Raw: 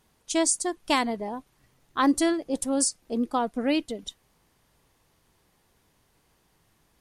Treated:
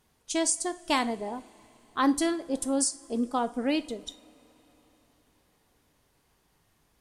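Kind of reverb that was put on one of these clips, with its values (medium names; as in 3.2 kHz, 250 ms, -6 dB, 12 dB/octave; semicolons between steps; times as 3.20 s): two-slope reverb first 0.37 s, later 4.2 s, from -22 dB, DRR 11 dB; trim -2.5 dB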